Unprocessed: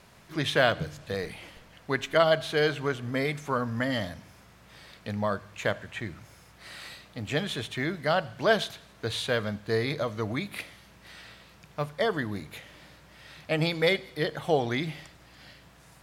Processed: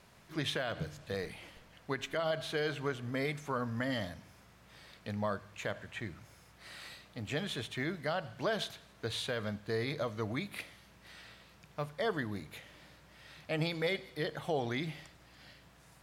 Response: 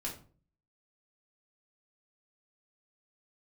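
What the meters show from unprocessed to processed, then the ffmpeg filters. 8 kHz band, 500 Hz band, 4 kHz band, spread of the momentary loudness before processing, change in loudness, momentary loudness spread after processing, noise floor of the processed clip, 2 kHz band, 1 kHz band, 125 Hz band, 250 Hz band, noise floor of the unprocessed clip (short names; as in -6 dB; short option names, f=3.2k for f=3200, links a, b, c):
-6.0 dB, -9.0 dB, -7.5 dB, 19 LU, -8.5 dB, 20 LU, -61 dBFS, -8.5 dB, -9.0 dB, -6.5 dB, -6.5 dB, -55 dBFS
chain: -af "alimiter=limit=-18dB:level=0:latency=1:release=63,volume=-5.5dB"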